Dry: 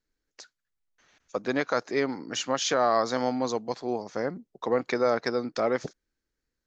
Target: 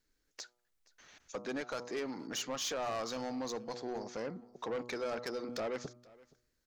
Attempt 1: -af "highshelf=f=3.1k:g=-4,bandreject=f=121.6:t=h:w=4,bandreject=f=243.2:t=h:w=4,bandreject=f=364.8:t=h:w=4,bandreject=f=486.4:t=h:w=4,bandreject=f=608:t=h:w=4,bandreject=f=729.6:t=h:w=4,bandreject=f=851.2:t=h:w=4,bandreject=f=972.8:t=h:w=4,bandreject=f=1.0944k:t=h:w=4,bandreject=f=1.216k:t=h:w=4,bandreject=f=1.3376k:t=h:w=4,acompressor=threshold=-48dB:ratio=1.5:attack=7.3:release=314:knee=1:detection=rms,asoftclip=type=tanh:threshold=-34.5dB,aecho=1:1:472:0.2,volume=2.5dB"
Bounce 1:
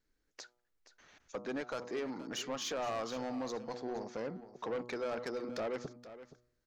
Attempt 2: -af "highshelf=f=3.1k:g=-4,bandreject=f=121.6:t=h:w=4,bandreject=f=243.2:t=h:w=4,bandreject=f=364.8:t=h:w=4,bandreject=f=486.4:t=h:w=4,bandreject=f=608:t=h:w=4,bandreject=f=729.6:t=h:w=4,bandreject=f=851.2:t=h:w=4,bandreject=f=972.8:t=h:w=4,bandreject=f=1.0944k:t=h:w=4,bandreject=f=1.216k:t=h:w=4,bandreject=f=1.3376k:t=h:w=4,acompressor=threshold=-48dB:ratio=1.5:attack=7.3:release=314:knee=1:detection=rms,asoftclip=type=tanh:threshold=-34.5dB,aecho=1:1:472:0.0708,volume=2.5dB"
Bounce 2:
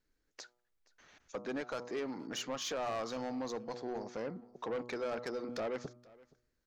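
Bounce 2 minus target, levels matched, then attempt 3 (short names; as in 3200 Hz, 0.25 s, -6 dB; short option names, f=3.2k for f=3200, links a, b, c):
8000 Hz band -4.0 dB
-af "highshelf=f=3.1k:g=4,bandreject=f=121.6:t=h:w=4,bandreject=f=243.2:t=h:w=4,bandreject=f=364.8:t=h:w=4,bandreject=f=486.4:t=h:w=4,bandreject=f=608:t=h:w=4,bandreject=f=729.6:t=h:w=4,bandreject=f=851.2:t=h:w=4,bandreject=f=972.8:t=h:w=4,bandreject=f=1.0944k:t=h:w=4,bandreject=f=1.216k:t=h:w=4,bandreject=f=1.3376k:t=h:w=4,acompressor=threshold=-48dB:ratio=1.5:attack=7.3:release=314:knee=1:detection=rms,asoftclip=type=tanh:threshold=-34.5dB,aecho=1:1:472:0.0708,volume=2.5dB"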